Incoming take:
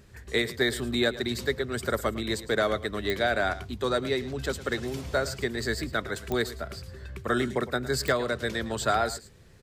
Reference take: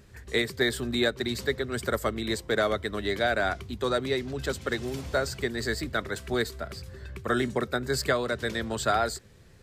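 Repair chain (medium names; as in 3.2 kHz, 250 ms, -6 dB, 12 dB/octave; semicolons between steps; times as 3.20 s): de-click; inverse comb 109 ms -16 dB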